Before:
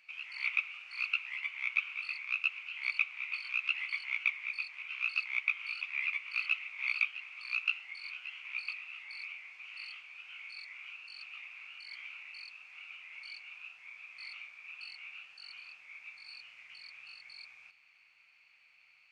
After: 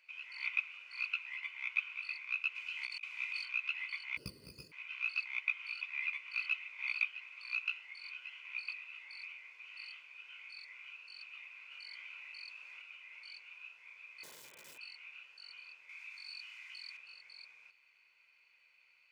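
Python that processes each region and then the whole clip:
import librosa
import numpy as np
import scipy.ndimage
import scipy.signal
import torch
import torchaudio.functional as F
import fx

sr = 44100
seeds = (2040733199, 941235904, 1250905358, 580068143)

y = fx.chain(x, sr, fx.bass_treble(bass_db=10, treble_db=9),
    fx.over_compress(threshold_db=-36.0, ratio=-0.5), at=(2.55, 3.45))
y = fx.chain(y, sr, fx.lower_of_two(delay_ms=0.65),
    fx.peak_eq(hz=2300.0, db=-14.5, octaves=2.8), at=(4.17, 4.72))
y = fx.chain(y, sr, fx.highpass(hz=130.0, slope=12),
    fx.env_flatten(amount_pct=50), at=(11.71, 12.82))
y = fx.chain(y, sr, fx.cvsd(bps=16000),
    fx.overflow_wrap(gain_db=44.5), at=(14.23, 14.78))
y = fx.chain(y, sr, fx.highpass(hz=830.0, slope=24),
    fx.high_shelf(hz=3600.0, db=7.0),
    fx.env_flatten(amount_pct=50), at=(15.89, 16.97))
y = scipy.signal.sosfilt(scipy.signal.butter(2, 250.0, 'highpass', fs=sr, output='sos'), y)
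y = fx.low_shelf(y, sr, hz=370.0, db=9.0)
y = y + 0.47 * np.pad(y, (int(2.0 * sr / 1000.0), 0))[:len(y)]
y = y * 10.0 ** (-5.0 / 20.0)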